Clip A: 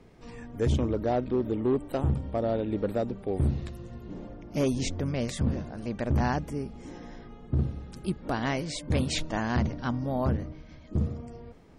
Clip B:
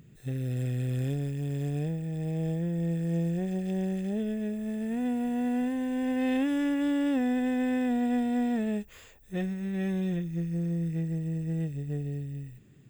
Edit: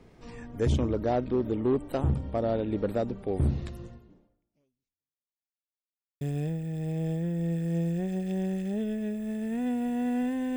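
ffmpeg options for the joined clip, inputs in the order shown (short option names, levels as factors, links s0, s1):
-filter_complex "[0:a]apad=whole_dur=10.56,atrim=end=10.56,asplit=2[s0][s1];[s0]atrim=end=5.43,asetpts=PTS-STARTPTS,afade=t=out:st=3.85:d=1.58:c=exp[s2];[s1]atrim=start=5.43:end=6.21,asetpts=PTS-STARTPTS,volume=0[s3];[1:a]atrim=start=1.6:end=5.95,asetpts=PTS-STARTPTS,afade=t=in:d=0.004:c=hsin[s4];[s2][s3][s4]concat=n=3:v=0:a=1"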